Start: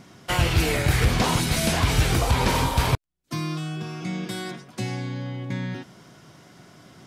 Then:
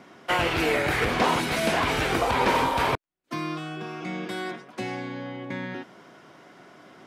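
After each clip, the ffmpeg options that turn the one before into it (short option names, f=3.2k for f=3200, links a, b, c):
-filter_complex "[0:a]acrossover=split=240 3000:gain=0.126 1 0.251[a][b][c];[a][b][c]amix=inputs=3:normalize=0,volume=3dB"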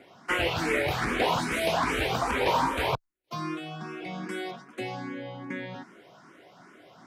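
-filter_complex "[0:a]asplit=2[a][b];[b]afreqshift=2.5[c];[a][c]amix=inputs=2:normalize=1"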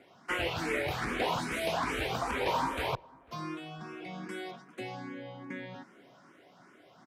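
-filter_complex "[0:a]asplit=2[a][b];[b]adelay=496,lowpass=f=1.2k:p=1,volume=-23.5dB,asplit=2[c][d];[d]adelay=496,lowpass=f=1.2k:p=1,volume=0.47,asplit=2[e][f];[f]adelay=496,lowpass=f=1.2k:p=1,volume=0.47[g];[a][c][e][g]amix=inputs=4:normalize=0,volume=-5.5dB"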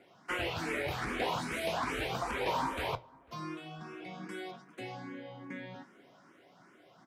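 -af "flanger=delay=5.6:depth=9.4:regen=-65:speed=0.44:shape=sinusoidal,volume=2dB"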